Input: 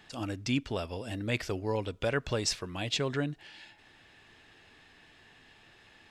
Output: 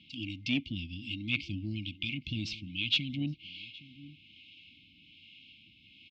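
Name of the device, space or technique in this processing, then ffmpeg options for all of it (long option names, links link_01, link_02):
guitar amplifier with harmonic tremolo: -filter_complex "[0:a]afftfilt=real='re*(1-between(b*sr/4096,340,2100))':imag='im*(1-between(b*sr/4096,340,2100))':win_size=4096:overlap=0.75,asplit=2[link_01][link_02];[link_02]adelay=816.3,volume=-17dB,highshelf=frequency=4000:gain=-18.4[link_03];[link_01][link_03]amix=inputs=2:normalize=0,acrossover=split=450[link_04][link_05];[link_04]aeval=exprs='val(0)*(1-0.5/2+0.5/2*cos(2*PI*1.2*n/s))':channel_layout=same[link_06];[link_05]aeval=exprs='val(0)*(1-0.5/2-0.5/2*cos(2*PI*1.2*n/s))':channel_layout=same[link_07];[link_06][link_07]amix=inputs=2:normalize=0,asoftclip=type=tanh:threshold=-23dB,highpass=88,equalizer=frequency=130:width_type=q:width=4:gain=-6,equalizer=frequency=320:width_type=q:width=4:gain=-5,equalizer=frequency=800:width_type=q:width=4:gain=-9,equalizer=frequency=3000:width_type=q:width=4:gain=7,lowpass=frequency=4100:width=0.5412,lowpass=frequency=4100:width=1.3066,volume=4.5dB"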